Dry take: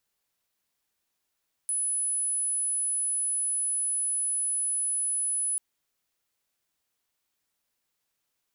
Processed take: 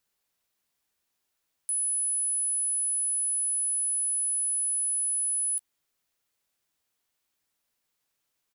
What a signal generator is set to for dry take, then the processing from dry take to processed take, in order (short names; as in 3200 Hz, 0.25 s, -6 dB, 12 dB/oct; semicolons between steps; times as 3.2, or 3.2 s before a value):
tone sine 10100 Hz -25.5 dBFS 3.89 s
doubler 13 ms -13 dB